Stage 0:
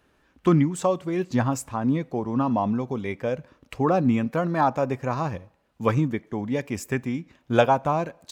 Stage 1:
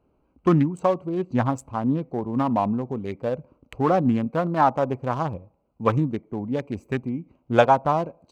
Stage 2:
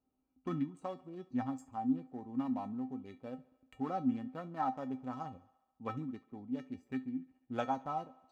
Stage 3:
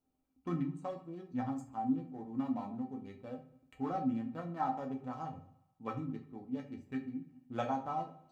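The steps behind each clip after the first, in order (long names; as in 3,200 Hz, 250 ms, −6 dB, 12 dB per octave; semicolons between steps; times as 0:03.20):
adaptive Wiener filter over 25 samples; dynamic equaliser 990 Hz, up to +4 dB, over −32 dBFS, Q 0.86
tuned comb filter 260 Hz, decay 0.18 s, harmonics odd, mix 90%; feedback echo with a high-pass in the loop 70 ms, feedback 68%, high-pass 230 Hz, level −22.5 dB; level −4 dB
rectangular room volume 33 cubic metres, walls mixed, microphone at 0.4 metres; level −1.5 dB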